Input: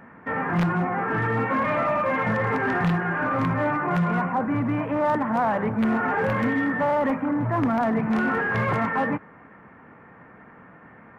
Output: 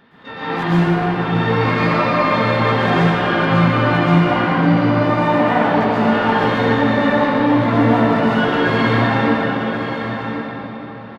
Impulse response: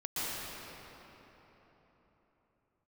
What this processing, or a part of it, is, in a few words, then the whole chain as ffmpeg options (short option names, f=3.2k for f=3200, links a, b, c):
shimmer-style reverb: -filter_complex "[0:a]asplit=3[a][b][c];[a]afade=t=out:st=0.66:d=0.02[d];[b]equalizer=f=2.5k:w=0.47:g=-6,afade=t=in:st=0.66:d=0.02,afade=t=out:st=1.22:d=0.02[e];[c]afade=t=in:st=1.22:d=0.02[f];[d][e][f]amix=inputs=3:normalize=0,asplit=2[g][h];[h]asetrate=88200,aresample=44100,atempo=0.5,volume=-6dB[i];[g][i]amix=inputs=2:normalize=0[j];[1:a]atrim=start_sample=2205[k];[j][k]afir=irnorm=-1:irlink=0,aecho=1:1:1078:0.355,volume=-1dB"